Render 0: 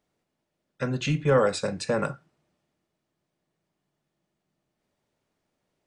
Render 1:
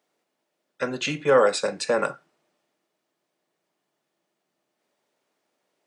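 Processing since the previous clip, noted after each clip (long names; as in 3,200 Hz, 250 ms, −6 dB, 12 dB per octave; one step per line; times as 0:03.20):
high-pass filter 340 Hz 12 dB per octave
level +4.5 dB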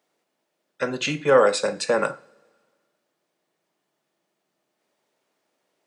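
coupled-rooms reverb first 0.4 s, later 1.7 s, from −18 dB, DRR 15 dB
level +1.5 dB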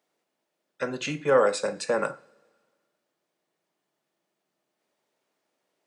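dynamic equaliser 3,600 Hz, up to −4 dB, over −39 dBFS, Q 1.2
level −4 dB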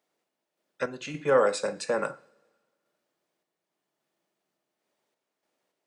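sample-and-hold tremolo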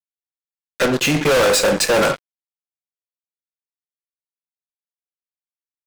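fuzz pedal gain 40 dB, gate −47 dBFS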